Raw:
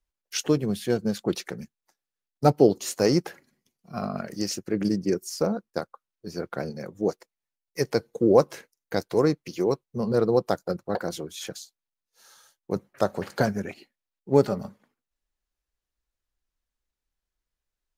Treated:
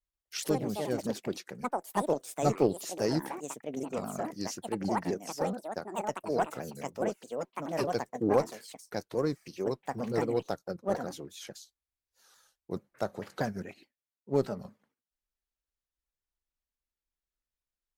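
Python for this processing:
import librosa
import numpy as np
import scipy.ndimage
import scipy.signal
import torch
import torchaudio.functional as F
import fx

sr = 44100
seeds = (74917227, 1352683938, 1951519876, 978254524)

y = fx.echo_pitch(x, sr, ms=134, semitones=5, count=2, db_per_echo=-3.0)
y = fx.cheby_harmonics(y, sr, harmonics=(2, 8), levels_db=(-15, -43), full_scale_db=-4.5)
y = fx.vibrato_shape(y, sr, shape='saw_down', rate_hz=4.7, depth_cents=160.0)
y = F.gain(torch.from_numpy(y), -8.5).numpy()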